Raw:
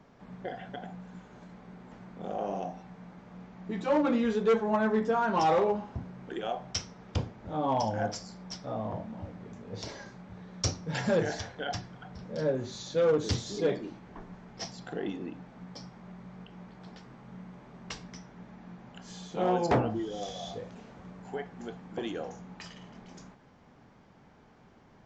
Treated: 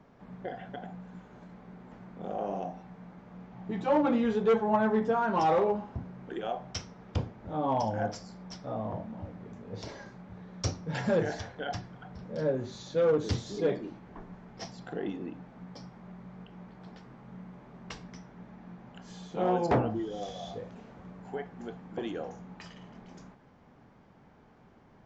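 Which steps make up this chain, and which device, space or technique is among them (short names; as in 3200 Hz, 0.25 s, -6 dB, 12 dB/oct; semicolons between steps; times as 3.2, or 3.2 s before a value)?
3.51–5.13 thirty-one-band EQ 125 Hz +9 dB, 800 Hz +6 dB, 3150 Hz +3 dB; behind a face mask (high shelf 3200 Hz -7.5 dB)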